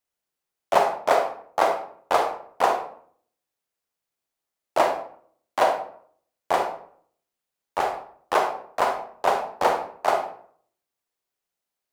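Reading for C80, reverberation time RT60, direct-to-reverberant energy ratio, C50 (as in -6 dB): 11.5 dB, 0.55 s, 4.5 dB, 6.5 dB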